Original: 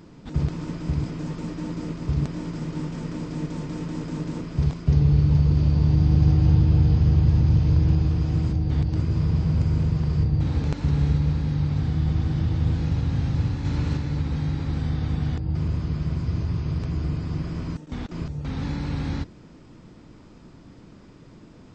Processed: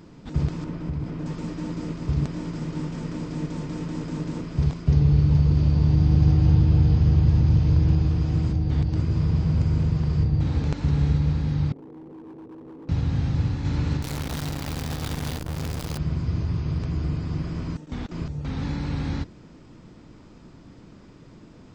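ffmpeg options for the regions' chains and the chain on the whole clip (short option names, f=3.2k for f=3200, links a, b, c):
-filter_complex "[0:a]asettb=1/sr,asplit=3[a][b][c];[a]atrim=end=0.644[d];[b]atrim=start=0.64:end=1.26,asetpts=PTS-STARTPTS,afade=t=in:d=0.004:c=qsin,afade=t=out:st=0.616:d=0.004:c=qsin,aemphasis=mode=reproduction:type=75kf,acompressor=threshold=-25dB:ratio=2.5:attack=3.2:release=140:knee=1:detection=peak[e];[c]atrim=start=1.256[f];[d][e]acrossfade=d=0.004:c1=hsin:c2=qsin[g];[g][f]acrossfade=d=0.004:c1=qsin:c2=hsin,asettb=1/sr,asplit=3[h][i][j];[h]atrim=end=11.724[k];[i]atrim=start=11.72:end=12.89,asetpts=PTS-STARTPTS,afade=t=in:d=0.004:c=qsin,afade=t=out:st=1.166:d=0.004:c=qsin,asuperpass=centerf=380:order=4:qfactor=1.9,asoftclip=type=hard:threshold=-39.5dB[l];[j]atrim=start=12.886[m];[k][l]acrossfade=d=0.004:c1=hsin:c2=qsin[n];[n][m]acrossfade=d=0.004:c1=qsin:c2=hsin,asettb=1/sr,asplit=3[o][p][q];[o]atrim=end=14.024[r];[p]atrim=start=14.02:end=15.98,asetpts=PTS-STARTPTS,afade=t=in:d=0.004:c=qsin,afade=t=out:st=1.956:d=0.004:c=qsin,bass=f=250:g=-6,treble=f=4k:g=7,acrusher=bits=6:dc=4:mix=0:aa=0.000001[s];[q]atrim=start=15.976[t];[r][s]acrossfade=d=0.004:c1=hsin:c2=qsin[u];[u][t]acrossfade=d=0.004:c1=qsin:c2=hsin"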